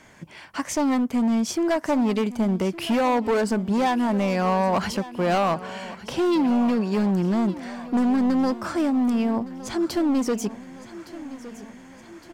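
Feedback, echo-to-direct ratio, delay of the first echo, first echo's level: 54%, −14.5 dB, 1,163 ms, −16.0 dB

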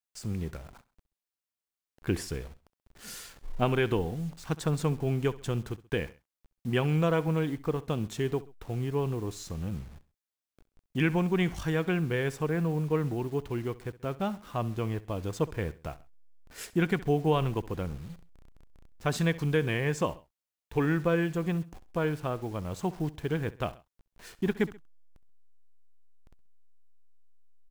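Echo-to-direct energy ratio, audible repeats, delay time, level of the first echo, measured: −18.0 dB, 2, 66 ms, −19.0 dB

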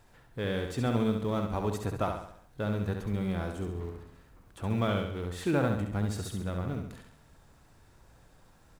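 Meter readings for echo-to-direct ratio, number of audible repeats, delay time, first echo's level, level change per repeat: −4.5 dB, 5, 68 ms, −5.5 dB, −6.5 dB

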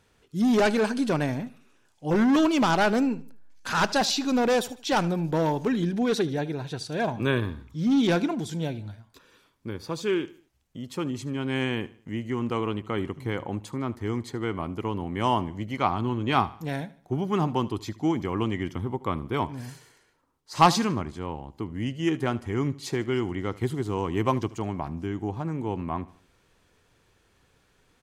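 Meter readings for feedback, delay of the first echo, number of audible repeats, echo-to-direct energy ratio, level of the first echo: 41%, 76 ms, 3, −18.5 dB, −19.5 dB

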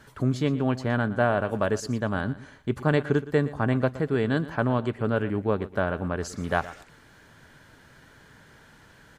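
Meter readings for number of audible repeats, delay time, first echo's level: 2, 118 ms, −16.5 dB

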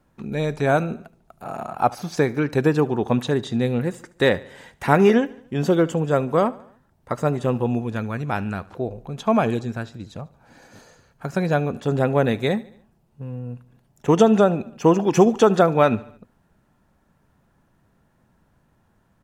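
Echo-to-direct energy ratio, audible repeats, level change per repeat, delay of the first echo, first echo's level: −19.5 dB, 3, −5.5 dB, 73 ms, −21.0 dB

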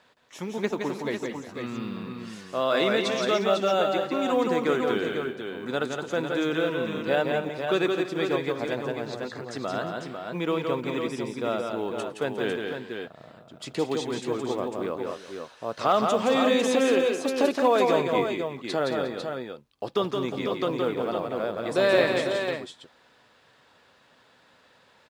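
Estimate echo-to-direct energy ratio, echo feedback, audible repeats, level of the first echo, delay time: −1.5 dB, repeats not evenly spaced, 4, −4.5 dB, 168 ms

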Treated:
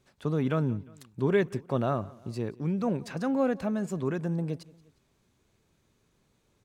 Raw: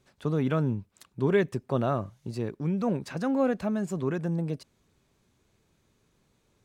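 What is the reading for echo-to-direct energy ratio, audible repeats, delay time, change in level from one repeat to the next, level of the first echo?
−21.5 dB, 2, 177 ms, −5.5 dB, −22.5 dB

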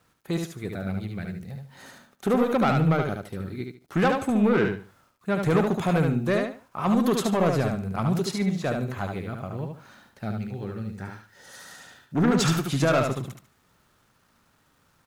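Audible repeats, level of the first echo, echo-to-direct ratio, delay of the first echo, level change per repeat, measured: 3, −4.5 dB, −4.0 dB, 73 ms, −12.5 dB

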